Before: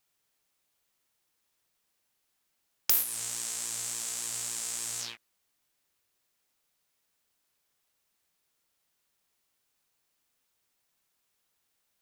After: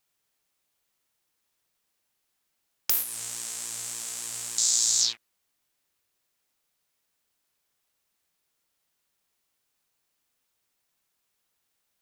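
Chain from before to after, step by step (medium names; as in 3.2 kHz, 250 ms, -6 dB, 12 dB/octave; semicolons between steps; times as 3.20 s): 4.58–5.13 s: high-order bell 5.2 kHz +15.5 dB 1.3 oct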